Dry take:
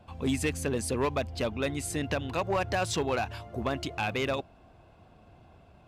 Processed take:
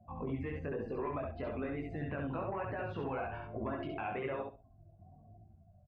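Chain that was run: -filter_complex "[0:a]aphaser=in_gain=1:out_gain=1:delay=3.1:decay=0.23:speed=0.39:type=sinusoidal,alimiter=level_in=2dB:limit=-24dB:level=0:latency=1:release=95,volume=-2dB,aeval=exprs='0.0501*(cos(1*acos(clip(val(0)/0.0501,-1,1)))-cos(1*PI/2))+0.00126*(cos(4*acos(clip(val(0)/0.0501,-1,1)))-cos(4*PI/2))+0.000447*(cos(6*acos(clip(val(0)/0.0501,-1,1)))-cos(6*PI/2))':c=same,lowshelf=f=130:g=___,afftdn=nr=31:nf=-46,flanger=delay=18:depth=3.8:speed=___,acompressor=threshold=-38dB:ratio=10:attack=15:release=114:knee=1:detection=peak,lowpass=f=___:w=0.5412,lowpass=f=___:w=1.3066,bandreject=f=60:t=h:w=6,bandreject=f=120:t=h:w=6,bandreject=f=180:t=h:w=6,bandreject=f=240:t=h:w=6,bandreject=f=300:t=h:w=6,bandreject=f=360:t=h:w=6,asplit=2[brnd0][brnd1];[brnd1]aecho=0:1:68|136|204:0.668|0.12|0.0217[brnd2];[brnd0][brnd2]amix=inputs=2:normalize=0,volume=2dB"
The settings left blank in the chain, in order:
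-2.5, 1.1, 2100, 2100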